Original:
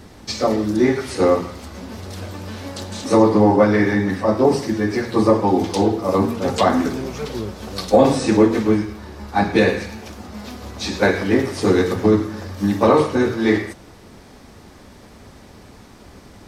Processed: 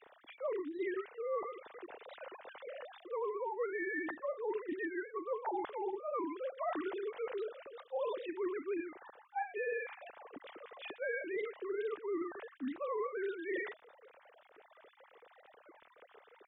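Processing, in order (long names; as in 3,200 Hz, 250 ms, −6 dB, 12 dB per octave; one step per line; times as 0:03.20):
three sine waves on the formant tracks
dynamic equaliser 330 Hz, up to −8 dB, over −29 dBFS, Q 1.8
reversed playback
downward compressor 10 to 1, threshold −28 dBFS, peak gain reduction 19.5 dB
reversed playback
wow of a warped record 45 rpm, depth 160 cents
level −7 dB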